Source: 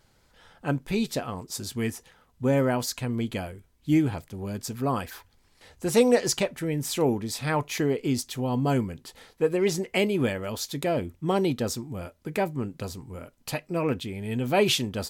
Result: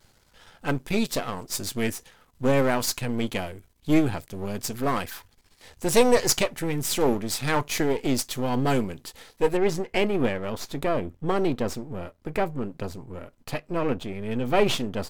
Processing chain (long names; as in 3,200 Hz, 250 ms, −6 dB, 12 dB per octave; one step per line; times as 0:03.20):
gain on one half-wave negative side −12 dB
high-shelf EQ 2,900 Hz +3.5 dB, from 0:09.57 −8.5 dB
level +5 dB